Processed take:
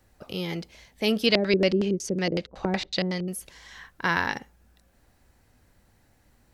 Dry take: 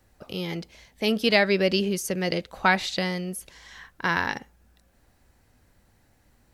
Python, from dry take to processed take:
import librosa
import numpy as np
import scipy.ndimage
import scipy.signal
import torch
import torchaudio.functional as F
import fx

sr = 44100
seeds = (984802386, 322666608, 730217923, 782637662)

y = fx.filter_lfo_lowpass(x, sr, shape='square', hz=5.4, low_hz=370.0, high_hz=5500.0, q=1.3, at=(1.26, 3.28))